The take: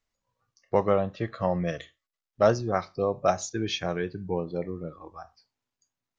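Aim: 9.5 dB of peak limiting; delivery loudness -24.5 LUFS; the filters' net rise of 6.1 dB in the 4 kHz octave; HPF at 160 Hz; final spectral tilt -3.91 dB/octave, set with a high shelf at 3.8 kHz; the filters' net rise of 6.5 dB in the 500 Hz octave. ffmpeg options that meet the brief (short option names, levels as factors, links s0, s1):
-af "highpass=160,equalizer=f=500:t=o:g=7.5,highshelf=f=3800:g=8,equalizer=f=4000:t=o:g=3,volume=1.33,alimiter=limit=0.266:level=0:latency=1"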